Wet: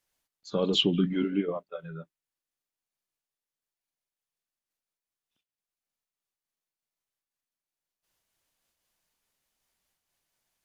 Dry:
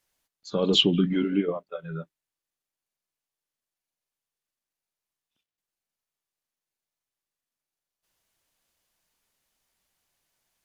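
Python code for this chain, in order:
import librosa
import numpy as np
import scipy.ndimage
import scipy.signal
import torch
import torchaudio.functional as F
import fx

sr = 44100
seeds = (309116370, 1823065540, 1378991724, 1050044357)

y = fx.am_noise(x, sr, seeds[0], hz=5.7, depth_pct=60)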